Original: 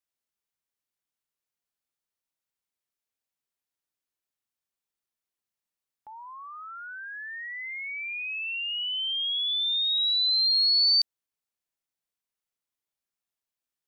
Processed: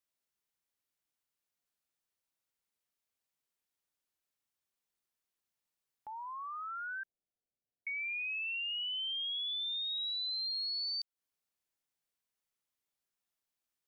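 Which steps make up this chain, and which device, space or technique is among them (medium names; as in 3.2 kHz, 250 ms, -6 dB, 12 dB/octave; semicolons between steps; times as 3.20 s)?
7.03–7.87 s: steep low-pass 760 Hz 96 dB/octave; serial compression, peaks first (compression, threshold -33 dBFS, peak gain reduction 12.5 dB; compression 2.5:1, threshold -37 dBFS, peak gain reduction 4 dB)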